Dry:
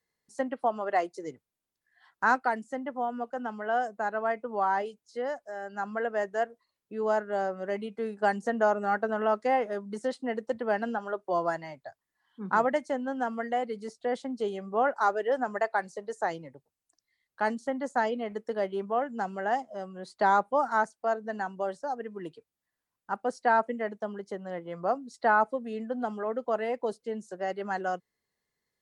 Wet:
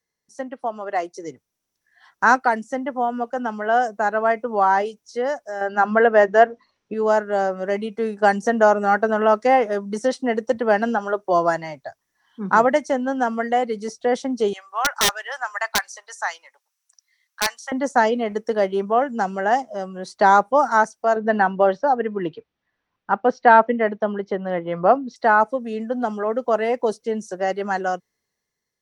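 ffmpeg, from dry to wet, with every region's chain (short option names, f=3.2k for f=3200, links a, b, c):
-filter_complex "[0:a]asettb=1/sr,asplit=3[a][b][c];[a]atrim=end=5.614[d];[b]atrim=start=5.61:end=6.94,asetpts=PTS-STARTPTS,afade=t=in:d=0.004:c=qsin,afade=t=out:st=1.326:d=0.004:c=qsin,lowpass=3.7k,acontrast=77,bandreject=f=50:t=h:w=6,bandreject=f=100:t=h:w=6,bandreject=f=150:t=h:w=6,bandreject=f=200:t=h:w=6,bandreject=f=250:t=h:w=6,bandreject=f=300:t=h:w=6,bandreject=f=350:t=h:w=6[e];[c]atrim=start=6.936[f];[d][e]acrossfade=d=0.004:c1=hsin:c2=qsin[g];[g][f]acrossfade=d=0.004:c1=qsin:c2=hsin,asettb=1/sr,asplit=3[h][i][j];[h]atrim=end=14.534[k];[i]atrim=start=14.53:end=17.72,asetpts=PTS-STARTPTS,afade=t=in:d=0.004:c=qsin,afade=t=out:st=3.186:d=0.004:c=qsin,highpass=f=990:w=0.5412,highpass=f=990:w=1.3066,aeval=exprs='(mod(12.6*val(0)+1,2)-1)/12.6':c=same[l];[j]atrim=start=17.716[m];[k][l]acrossfade=d=0.004:c1=hsin:c2=qsin[n];[n][m]acrossfade=d=0.004:c1=qsin:c2=hsin,asettb=1/sr,asplit=3[o][p][q];[o]atrim=end=21.164[r];[p]atrim=start=21.16:end=25.16,asetpts=PTS-STARTPTS,afade=t=in:d=0.004:c=qsin,afade=t=out:st=3.996:d=0.004:c=qsin,lowpass=f=3.7k:w=0.5412,lowpass=f=3.7k:w=1.3066,acontrast=60[s];[q]atrim=start=25.156[t];[r][s]acrossfade=d=0.004:c1=hsin:c2=qsin[u];[u][t]acrossfade=d=0.004:c1=qsin:c2=hsin,dynaudnorm=f=290:g=9:m=10.5dB,equalizer=f=5.8k:w=7.5:g=11.5"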